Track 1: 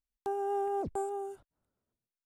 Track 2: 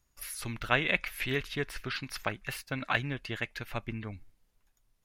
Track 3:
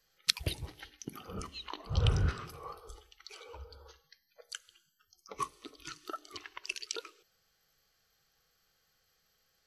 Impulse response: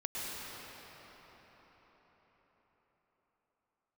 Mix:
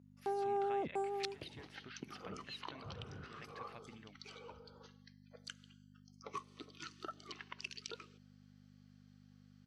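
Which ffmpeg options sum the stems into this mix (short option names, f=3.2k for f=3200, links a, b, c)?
-filter_complex "[0:a]volume=-3.5dB[a];[1:a]acompressor=threshold=-34dB:ratio=10,volume=-14dB[b];[2:a]adelay=950,volume=-3dB[c];[b][c]amix=inputs=2:normalize=0,acompressor=threshold=-40dB:ratio=5,volume=0dB[d];[a][d]amix=inputs=2:normalize=0,aeval=exprs='val(0)+0.00251*(sin(2*PI*50*n/s)+sin(2*PI*2*50*n/s)/2+sin(2*PI*3*50*n/s)/3+sin(2*PI*4*50*n/s)/4+sin(2*PI*5*50*n/s)/5)':c=same,highpass=160,lowpass=5.5k"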